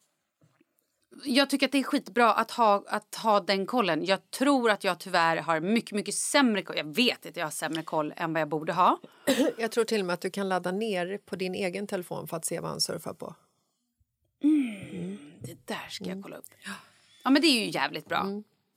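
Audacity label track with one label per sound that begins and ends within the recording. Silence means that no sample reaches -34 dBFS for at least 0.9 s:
1.230000	13.280000	sound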